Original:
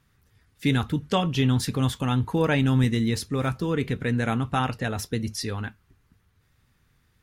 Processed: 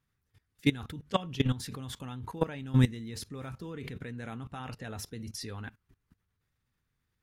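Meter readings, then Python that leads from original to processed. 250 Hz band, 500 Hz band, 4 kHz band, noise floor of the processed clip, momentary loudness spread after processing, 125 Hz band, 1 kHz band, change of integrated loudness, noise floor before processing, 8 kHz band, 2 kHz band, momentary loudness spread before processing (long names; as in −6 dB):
−9.0 dB, −9.5 dB, −8.0 dB, −81 dBFS, 14 LU, −8.5 dB, −11.0 dB, −9.0 dB, −66 dBFS, −8.5 dB, −10.5 dB, 8 LU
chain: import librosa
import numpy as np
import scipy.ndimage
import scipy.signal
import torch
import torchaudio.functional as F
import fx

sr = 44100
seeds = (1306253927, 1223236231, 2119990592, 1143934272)

y = fx.level_steps(x, sr, step_db=20)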